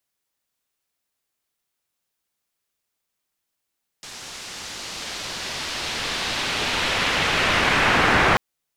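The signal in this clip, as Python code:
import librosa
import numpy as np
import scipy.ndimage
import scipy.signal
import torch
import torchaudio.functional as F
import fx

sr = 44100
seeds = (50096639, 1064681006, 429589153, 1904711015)

y = fx.riser_noise(sr, seeds[0], length_s=4.34, colour='white', kind='lowpass', start_hz=6100.0, end_hz=1500.0, q=1.1, swell_db=28.0, law='linear')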